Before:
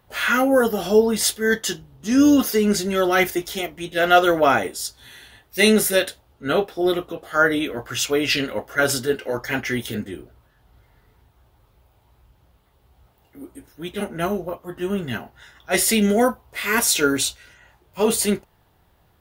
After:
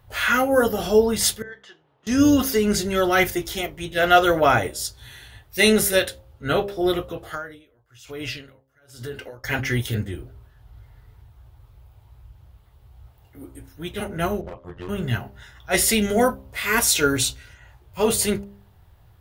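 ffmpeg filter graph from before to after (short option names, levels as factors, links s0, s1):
-filter_complex "[0:a]asettb=1/sr,asplit=3[s0][s1][s2];[s0]atrim=end=1.424[s3];[s1]atrim=start=1.42:end=2.07,asetpts=PTS-STARTPTS,afade=t=in:d=0.004:c=qsin,afade=t=out:st=0.646:d=0.004:c=qsin,acompressor=threshold=0.00562:ratio=2:attack=3.2:release=140:knee=1:detection=peak,acrusher=bits=9:mode=log:mix=0:aa=0.000001,highpass=550,lowpass=2400[s4];[s2]atrim=start=2.066[s5];[s3][s4]acrossfade=d=0.004:c1=hsin:c2=qsin[s6];[s6][s5]acrossfade=d=0.004:c1=qsin:c2=hsin,asettb=1/sr,asplit=3[s7][s8][s9];[s7]atrim=end=7.344[s10];[s8]atrim=start=7.34:end=9.44,asetpts=PTS-STARTPTS,afade=t=in:d=0.004:c=qsin,afade=t=out:st=2.096:d=0.004:c=qsin,acompressor=threshold=0.0562:ratio=16:attack=3.2:release=140:knee=1:detection=peak,aeval=exprs='val(0)*pow(10,-33*(0.5-0.5*cos(2*PI*1.1*n/s))/20)':c=same[s11];[s9]atrim=start=9.436[s12];[s10][s11]acrossfade=d=0.004:c1=hsin:c2=qsin[s13];[s13][s12]acrossfade=d=0.004:c1=qsin:c2=hsin,asettb=1/sr,asplit=3[s14][s15][s16];[s14]atrim=end=14.414[s17];[s15]atrim=start=14.41:end=14.89,asetpts=PTS-STARTPTS,afade=t=in:d=0.004:c=qsin,afade=t=out:st=0.476:d=0.004:c=qsin,lowpass=3900,asoftclip=type=hard:threshold=0.0447,tremolo=f=88:d=0.974[s18];[s16]atrim=start=14.886[s19];[s17][s18]acrossfade=d=0.004:c1=hsin:c2=qsin[s20];[s20][s19]acrossfade=d=0.004:c1=qsin:c2=hsin,lowshelf=f=150:t=q:w=1.5:g=9,bandreject=f=66.85:t=h:w=4,bandreject=f=133.7:t=h:w=4,bandreject=f=200.55:t=h:w=4,bandreject=f=267.4:t=h:w=4,bandreject=f=334.25:t=h:w=4,bandreject=f=401.1:t=h:w=4,bandreject=f=467.95:t=h:w=4,bandreject=f=534.8:t=h:w=4,bandreject=f=601.65:t=h:w=4"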